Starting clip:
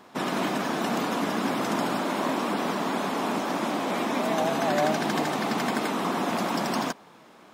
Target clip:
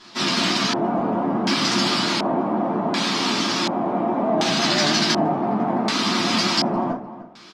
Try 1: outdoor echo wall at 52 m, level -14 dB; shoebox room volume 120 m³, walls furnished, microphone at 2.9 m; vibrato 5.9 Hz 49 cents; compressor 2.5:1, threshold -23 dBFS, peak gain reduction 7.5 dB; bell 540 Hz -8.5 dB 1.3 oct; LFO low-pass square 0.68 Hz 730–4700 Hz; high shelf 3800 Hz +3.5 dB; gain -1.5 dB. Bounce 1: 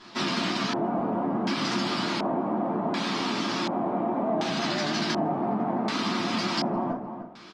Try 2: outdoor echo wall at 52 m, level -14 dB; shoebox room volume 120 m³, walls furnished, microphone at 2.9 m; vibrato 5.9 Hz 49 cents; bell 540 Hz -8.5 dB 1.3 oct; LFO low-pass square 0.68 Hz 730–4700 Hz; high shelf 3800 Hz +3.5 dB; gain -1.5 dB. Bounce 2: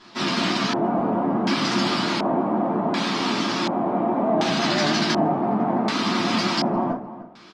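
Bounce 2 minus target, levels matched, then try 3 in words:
8000 Hz band -5.0 dB
outdoor echo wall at 52 m, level -14 dB; shoebox room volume 120 m³, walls furnished, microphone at 2.9 m; vibrato 5.9 Hz 49 cents; bell 540 Hz -8.5 dB 1.3 oct; LFO low-pass square 0.68 Hz 730–4700 Hz; high shelf 3800 Hz +13 dB; gain -1.5 dB

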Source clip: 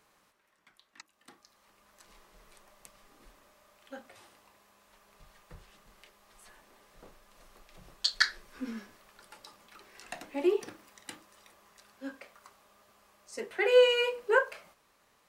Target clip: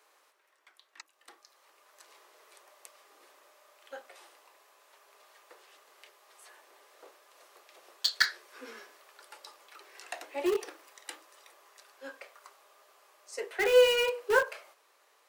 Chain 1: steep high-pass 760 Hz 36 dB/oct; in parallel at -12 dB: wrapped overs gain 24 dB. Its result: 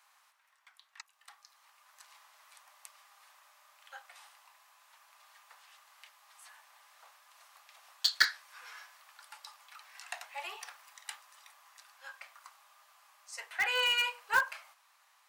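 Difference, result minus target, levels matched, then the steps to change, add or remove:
500 Hz band -17.0 dB
change: steep high-pass 360 Hz 36 dB/oct

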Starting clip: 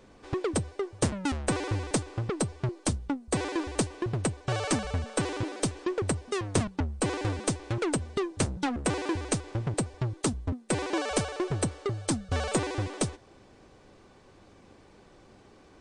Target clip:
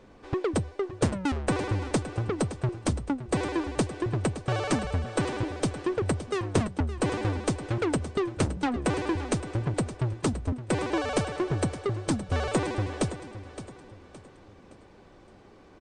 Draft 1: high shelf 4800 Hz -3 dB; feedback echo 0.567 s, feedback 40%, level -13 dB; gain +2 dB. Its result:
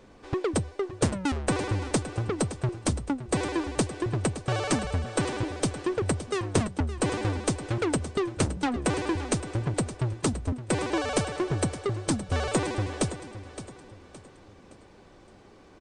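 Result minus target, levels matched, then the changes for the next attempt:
8000 Hz band +4.5 dB
change: high shelf 4800 Hz -9.5 dB

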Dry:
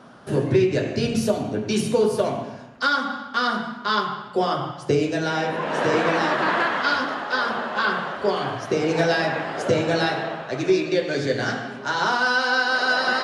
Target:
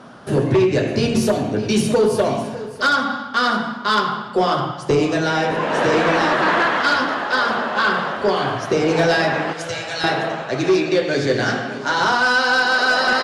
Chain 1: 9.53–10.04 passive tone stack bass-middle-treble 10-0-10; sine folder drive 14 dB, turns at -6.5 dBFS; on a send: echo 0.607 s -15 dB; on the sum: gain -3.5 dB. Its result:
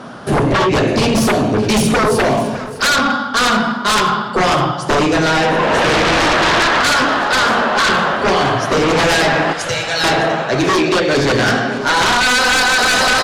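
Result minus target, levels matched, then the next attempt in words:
sine folder: distortion +17 dB
9.53–10.04 passive tone stack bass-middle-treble 10-0-10; sine folder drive 5 dB, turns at -6.5 dBFS; on a send: echo 0.607 s -15 dB; on the sum: gain -3.5 dB

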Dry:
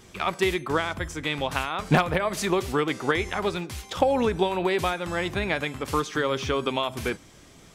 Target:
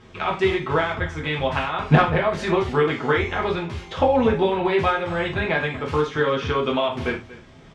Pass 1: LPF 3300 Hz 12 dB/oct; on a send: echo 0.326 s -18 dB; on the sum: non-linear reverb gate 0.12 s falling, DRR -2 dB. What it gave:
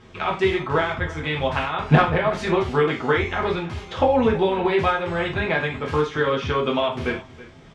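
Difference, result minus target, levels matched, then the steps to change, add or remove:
echo 90 ms late
change: echo 0.236 s -18 dB

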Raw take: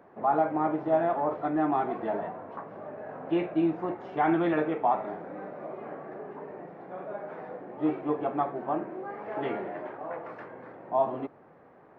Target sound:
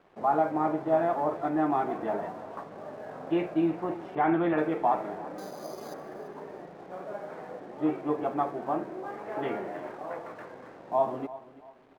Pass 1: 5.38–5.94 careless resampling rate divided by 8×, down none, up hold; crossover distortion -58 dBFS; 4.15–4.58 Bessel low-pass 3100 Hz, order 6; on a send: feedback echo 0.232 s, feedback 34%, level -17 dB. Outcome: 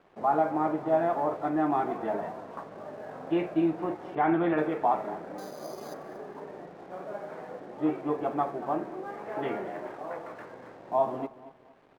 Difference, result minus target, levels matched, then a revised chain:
echo 0.107 s early
5.38–5.94 careless resampling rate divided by 8×, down none, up hold; crossover distortion -58 dBFS; 4.15–4.58 Bessel low-pass 3100 Hz, order 6; on a send: feedback echo 0.339 s, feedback 34%, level -17 dB

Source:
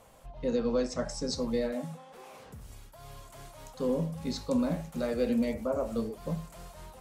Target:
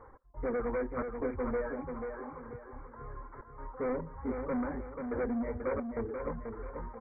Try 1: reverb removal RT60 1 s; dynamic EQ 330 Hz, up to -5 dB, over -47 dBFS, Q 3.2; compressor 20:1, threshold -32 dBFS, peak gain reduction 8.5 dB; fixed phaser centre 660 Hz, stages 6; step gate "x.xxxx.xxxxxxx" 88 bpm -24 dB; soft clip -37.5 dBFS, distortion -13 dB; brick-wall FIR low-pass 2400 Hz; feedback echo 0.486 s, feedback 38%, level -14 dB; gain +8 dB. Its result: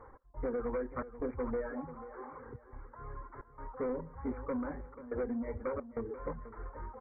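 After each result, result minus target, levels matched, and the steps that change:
compressor: peak gain reduction +8.5 dB; echo-to-direct -8 dB
remove: compressor 20:1, threshold -32 dBFS, peak gain reduction 8.5 dB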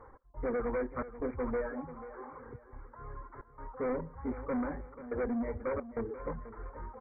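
echo-to-direct -8 dB
change: feedback echo 0.486 s, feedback 38%, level -6 dB

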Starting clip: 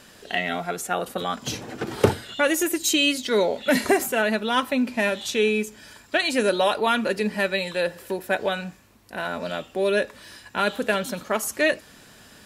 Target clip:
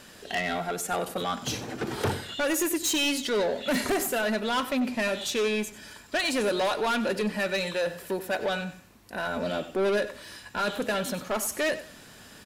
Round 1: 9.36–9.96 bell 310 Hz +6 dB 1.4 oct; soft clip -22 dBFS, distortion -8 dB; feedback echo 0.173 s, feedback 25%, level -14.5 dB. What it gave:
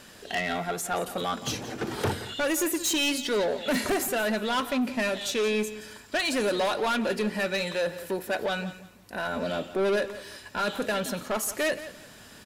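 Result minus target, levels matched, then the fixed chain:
echo 78 ms late
9.36–9.96 bell 310 Hz +6 dB 1.4 oct; soft clip -22 dBFS, distortion -8 dB; feedback echo 95 ms, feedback 25%, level -14.5 dB

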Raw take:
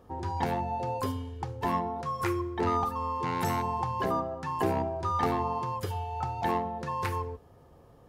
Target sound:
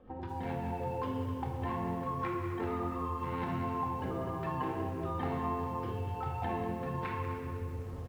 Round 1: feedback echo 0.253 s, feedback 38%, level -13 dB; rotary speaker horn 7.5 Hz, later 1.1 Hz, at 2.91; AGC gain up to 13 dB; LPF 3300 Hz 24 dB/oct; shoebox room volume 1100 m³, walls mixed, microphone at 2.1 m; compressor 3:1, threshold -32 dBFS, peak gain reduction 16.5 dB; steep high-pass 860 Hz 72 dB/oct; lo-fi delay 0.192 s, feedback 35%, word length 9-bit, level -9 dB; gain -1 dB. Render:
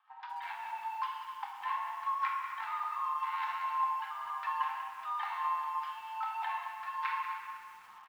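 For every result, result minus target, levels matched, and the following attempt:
compressor: peak gain reduction -5 dB; 1000 Hz band +4.0 dB
feedback echo 0.253 s, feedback 38%, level -13 dB; rotary speaker horn 7.5 Hz, later 1.1 Hz, at 2.91; AGC gain up to 13 dB; LPF 3300 Hz 24 dB/oct; shoebox room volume 1100 m³, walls mixed, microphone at 2.1 m; compressor 3:1, threshold -39.5 dBFS, peak gain reduction 21.5 dB; steep high-pass 860 Hz 72 dB/oct; lo-fi delay 0.192 s, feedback 35%, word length 9-bit, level -9 dB; gain -1 dB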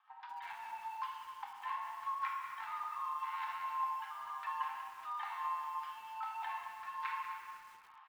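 1000 Hz band +4.0 dB
feedback echo 0.253 s, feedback 38%, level -13 dB; rotary speaker horn 7.5 Hz, later 1.1 Hz, at 2.91; AGC gain up to 13 dB; LPF 3300 Hz 24 dB/oct; shoebox room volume 1100 m³, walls mixed, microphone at 2.1 m; compressor 3:1, threshold -39.5 dBFS, peak gain reduction 21.5 dB; lo-fi delay 0.192 s, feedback 35%, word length 9-bit, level -9 dB; gain -1 dB

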